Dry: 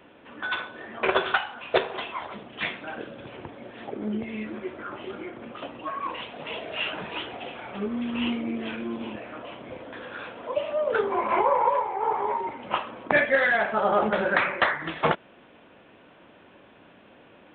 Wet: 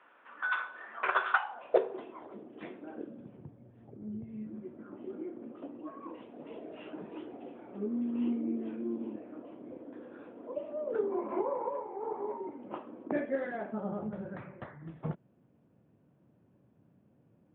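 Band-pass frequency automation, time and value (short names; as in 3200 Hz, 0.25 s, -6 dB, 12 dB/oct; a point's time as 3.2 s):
band-pass, Q 2.3
1.3 s 1300 Hz
1.96 s 330 Hz
2.97 s 330 Hz
3.63 s 110 Hz
4.13 s 110 Hz
5.16 s 300 Hz
13.59 s 300 Hz
14.09 s 130 Hz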